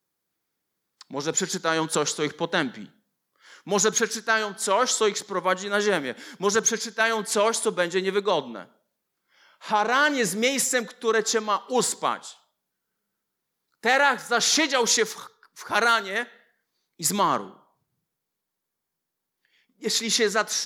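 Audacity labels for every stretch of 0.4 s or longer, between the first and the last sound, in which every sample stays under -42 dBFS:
2.860000	3.460000	silence
8.650000	9.620000	silence
12.340000	13.830000	silence
16.320000	17.000000	silence
17.530000	19.820000	silence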